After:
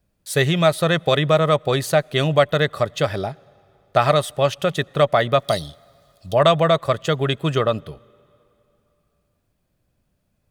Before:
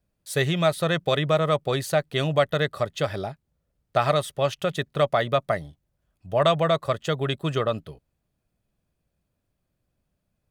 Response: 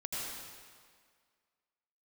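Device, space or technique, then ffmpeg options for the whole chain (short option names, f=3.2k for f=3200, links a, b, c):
ducked reverb: -filter_complex "[0:a]asplit=3[a][b][c];[a]afade=t=out:st=5.38:d=0.02[d];[b]highshelf=f=2.7k:t=q:w=3:g=12.5,afade=t=in:st=5.38:d=0.02,afade=t=out:st=6.33:d=0.02[e];[c]afade=t=in:st=6.33:d=0.02[f];[d][e][f]amix=inputs=3:normalize=0,asplit=3[g][h][i];[1:a]atrim=start_sample=2205[j];[h][j]afir=irnorm=-1:irlink=0[k];[i]apad=whole_len=463214[l];[k][l]sidechaincompress=threshold=-47dB:ratio=3:attack=22:release=848,volume=-12dB[m];[g][m]amix=inputs=2:normalize=0,volume=5dB"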